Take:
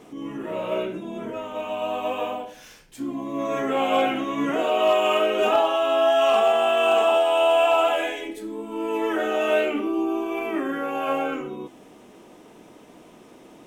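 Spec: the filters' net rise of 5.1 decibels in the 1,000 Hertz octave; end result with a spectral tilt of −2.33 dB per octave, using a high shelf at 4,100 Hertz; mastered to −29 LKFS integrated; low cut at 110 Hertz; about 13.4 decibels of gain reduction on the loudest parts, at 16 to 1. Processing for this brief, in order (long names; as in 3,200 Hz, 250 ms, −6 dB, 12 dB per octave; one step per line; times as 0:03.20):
high-pass filter 110 Hz
parametric band 1,000 Hz +7 dB
high-shelf EQ 4,100 Hz +3.5 dB
downward compressor 16 to 1, threshold −25 dBFS
level +0.5 dB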